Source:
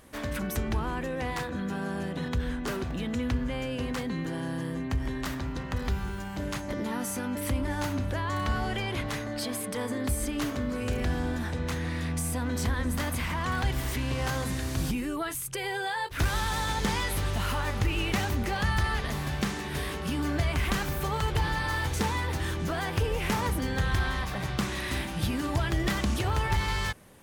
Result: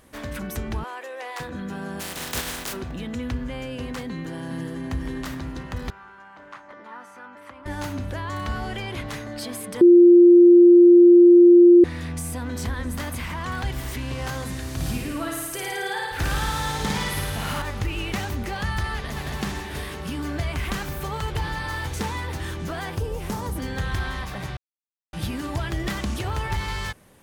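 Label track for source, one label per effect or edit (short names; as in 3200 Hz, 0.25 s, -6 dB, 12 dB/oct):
0.840000	1.400000	HPF 470 Hz 24 dB/oct
1.990000	2.720000	spectral contrast lowered exponent 0.29
4.090000	4.800000	echo throw 0.41 s, feedback 55%, level -6.5 dB
5.900000	7.660000	band-pass 1200 Hz, Q 1.8
9.810000	11.840000	bleep 349 Hz -7.5 dBFS
14.750000	17.620000	flutter echo walls apart 9.4 m, dies away in 1.3 s
18.940000	19.380000	echo throw 0.22 s, feedback 55%, level -2.5 dB
22.950000	23.560000	bell 2300 Hz -10.5 dB 1.5 oct
24.570000	25.130000	mute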